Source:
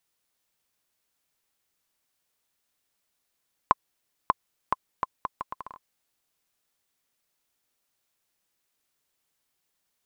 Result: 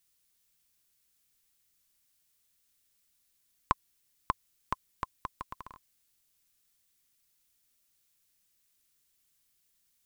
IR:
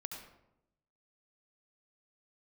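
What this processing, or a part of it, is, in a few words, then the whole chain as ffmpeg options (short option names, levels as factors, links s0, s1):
smiley-face EQ: -af "lowshelf=f=92:g=8,equalizer=f=710:t=o:w=1.8:g=-9,highshelf=f=5000:g=6.5"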